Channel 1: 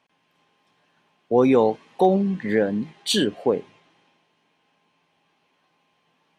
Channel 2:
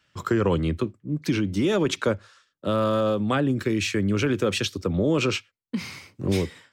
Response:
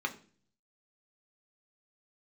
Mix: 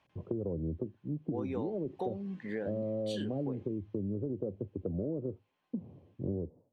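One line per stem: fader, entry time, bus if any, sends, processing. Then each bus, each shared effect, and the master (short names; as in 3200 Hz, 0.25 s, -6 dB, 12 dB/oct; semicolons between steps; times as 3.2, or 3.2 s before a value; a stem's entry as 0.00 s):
-3.5 dB, 0.00 s, no send, auto duck -10 dB, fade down 0.55 s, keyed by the second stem
-5.0 dB, 0.00 s, no send, steep low-pass 670 Hz 36 dB/oct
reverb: off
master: high shelf 8200 Hz -10.5 dB; compressor, threshold -32 dBFS, peak gain reduction 11 dB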